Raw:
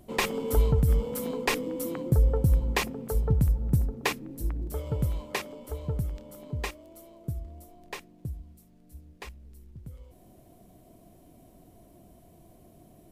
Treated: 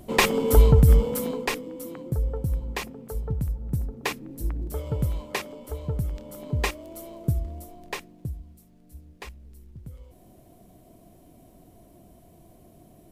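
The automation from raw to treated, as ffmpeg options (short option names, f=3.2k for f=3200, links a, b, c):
-af "volume=22dB,afade=t=out:st=0.93:d=0.69:silence=0.251189,afade=t=in:st=3.64:d=0.86:silence=0.473151,afade=t=in:st=5.97:d=1.16:silence=0.398107,afade=t=out:st=7.13:d=1.25:silence=0.398107"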